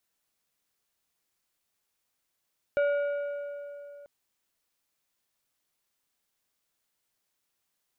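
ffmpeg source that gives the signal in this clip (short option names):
-f lavfi -i "aevalsrc='0.0841*pow(10,-3*t/3.18)*sin(2*PI*574*t)+0.0266*pow(10,-3*t/2.416)*sin(2*PI*1435*t)+0.00841*pow(10,-3*t/2.098)*sin(2*PI*2296*t)+0.00266*pow(10,-3*t/1.962)*sin(2*PI*2870*t)+0.000841*pow(10,-3*t/1.814)*sin(2*PI*3731*t)':d=1.29:s=44100"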